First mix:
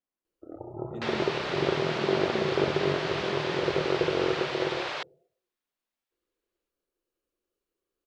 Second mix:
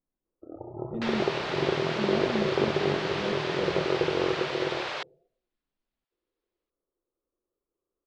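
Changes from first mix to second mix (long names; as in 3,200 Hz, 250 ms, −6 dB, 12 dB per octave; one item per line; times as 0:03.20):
speech: add spectral tilt −4 dB per octave
first sound: add Butterworth low-pass 1,300 Hz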